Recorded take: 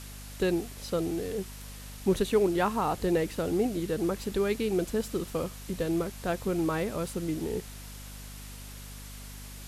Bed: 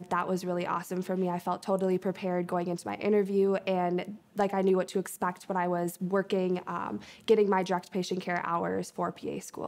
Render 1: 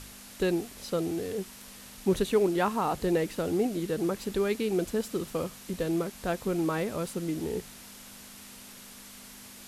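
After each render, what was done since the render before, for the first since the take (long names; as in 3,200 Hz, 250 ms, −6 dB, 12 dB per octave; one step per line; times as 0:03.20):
hum removal 50 Hz, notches 3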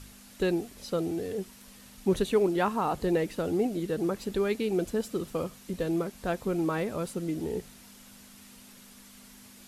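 broadband denoise 6 dB, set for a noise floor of −48 dBFS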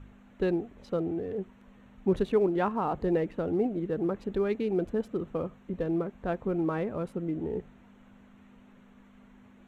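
adaptive Wiener filter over 9 samples
low-pass filter 1,600 Hz 6 dB per octave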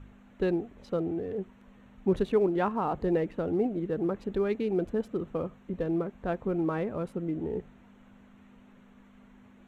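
no processing that can be heard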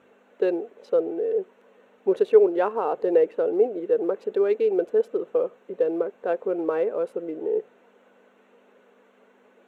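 high-pass with resonance 460 Hz, resonance Q 4.1
hollow resonant body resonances 1,500/2,700 Hz, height 7 dB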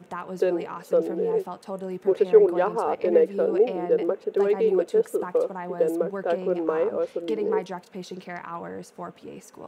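mix in bed −5 dB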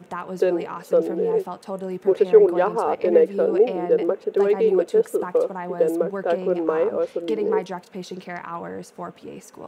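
level +3 dB
brickwall limiter −3 dBFS, peak gain reduction 1 dB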